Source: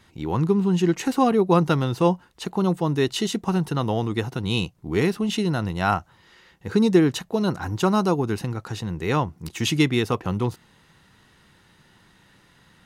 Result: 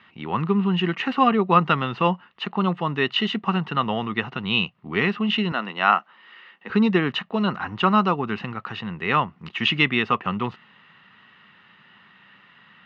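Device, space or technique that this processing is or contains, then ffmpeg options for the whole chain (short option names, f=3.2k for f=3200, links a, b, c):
kitchen radio: -filter_complex "[0:a]highpass=180,equalizer=f=210:t=q:w=4:g=4,equalizer=f=320:t=q:w=4:g=-8,equalizer=f=480:t=q:w=4:g=-4,equalizer=f=1.2k:t=q:w=4:g=10,equalizer=f=1.9k:t=q:w=4:g=7,equalizer=f=2.8k:t=q:w=4:g=10,lowpass=f=3.6k:w=0.5412,lowpass=f=3.6k:w=1.3066,asettb=1/sr,asplit=3[a][b][c];[a]atrim=end=5.524[d];[b]atrim=start=5.52:end=6.7,asetpts=PTS-STARTPTS,afade=t=in:d=0.004:c=qsin,afade=t=out:st=1.176:d=0.004:c=qsin,highpass=f=230:w=0.5412,highpass=f=230:w=1.3066[e];[c]atrim=start=6.696[f];[d][e]acrossfade=d=0.004:c1=hsin:c2=qsin[g];[g][f]acrossfade=d=0.004:c1=qsin:c2=hsin"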